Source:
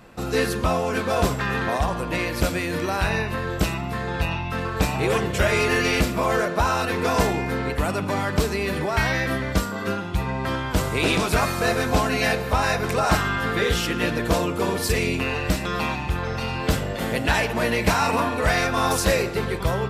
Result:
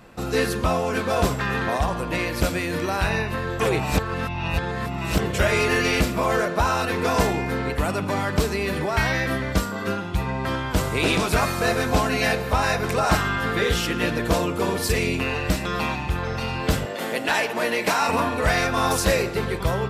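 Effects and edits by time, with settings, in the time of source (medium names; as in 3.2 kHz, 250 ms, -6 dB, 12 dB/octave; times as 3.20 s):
3.60–5.19 s: reverse
16.85–18.09 s: high-pass 280 Hz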